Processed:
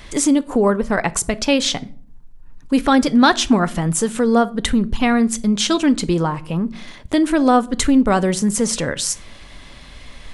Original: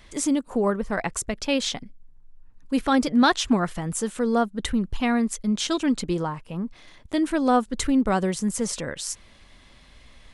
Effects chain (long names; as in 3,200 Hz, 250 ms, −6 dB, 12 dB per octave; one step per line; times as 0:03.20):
rectangular room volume 420 cubic metres, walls furnished, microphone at 0.32 metres
in parallel at +2.5 dB: downward compressor, threshold −31 dBFS, peak gain reduction 16 dB
on the sum: level +4 dB